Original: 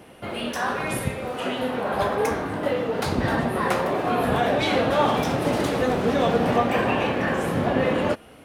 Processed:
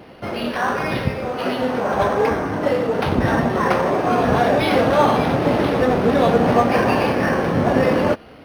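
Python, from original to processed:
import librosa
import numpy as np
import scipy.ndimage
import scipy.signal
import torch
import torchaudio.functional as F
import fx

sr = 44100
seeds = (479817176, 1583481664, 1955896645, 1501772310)

y = np.interp(np.arange(len(x)), np.arange(len(x))[::6], x[::6])
y = F.gain(torch.from_numpy(y), 5.5).numpy()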